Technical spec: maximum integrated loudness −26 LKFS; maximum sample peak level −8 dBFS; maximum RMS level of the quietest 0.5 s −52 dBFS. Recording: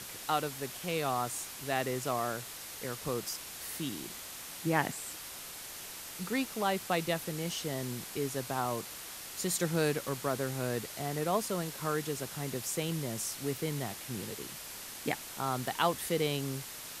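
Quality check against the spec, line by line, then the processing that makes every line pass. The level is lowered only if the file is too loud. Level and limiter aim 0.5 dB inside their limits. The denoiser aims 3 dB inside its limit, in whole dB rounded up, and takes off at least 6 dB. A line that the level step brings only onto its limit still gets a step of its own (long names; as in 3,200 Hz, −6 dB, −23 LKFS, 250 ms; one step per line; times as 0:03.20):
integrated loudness −35.0 LKFS: in spec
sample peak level −13.0 dBFS: in spec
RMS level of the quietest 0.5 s −45 dBFS: out of spec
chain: broadband denoise 10 dB, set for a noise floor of −45 dBFS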